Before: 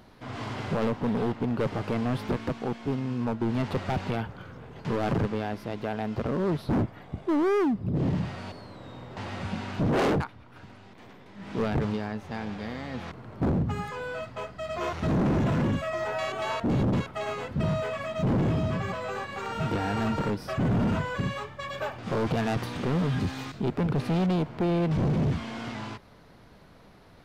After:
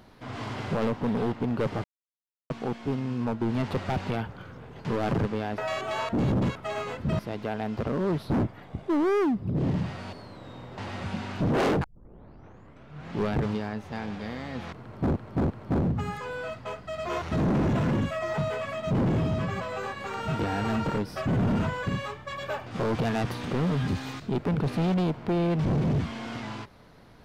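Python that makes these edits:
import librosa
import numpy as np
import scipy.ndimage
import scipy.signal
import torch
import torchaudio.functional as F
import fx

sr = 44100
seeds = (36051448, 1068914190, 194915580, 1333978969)

y = fx.edit(x, sr, fx.silence(start_s=1.84, length_s=0.66),
    fx.tape_start(start_s=10.23, length_s=1.49),
    fx.repeat(start_s=13.21, length_s=0.34, count=3),
    fx.move(start_s=16.09, length_s=1.61, to_s=5.58), tone=tone)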